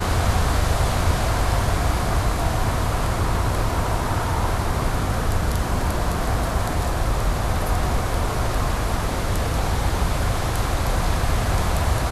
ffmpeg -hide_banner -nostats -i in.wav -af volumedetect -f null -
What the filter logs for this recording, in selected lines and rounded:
mean_volume: -20.7 dB
max_volume: -7.5 dB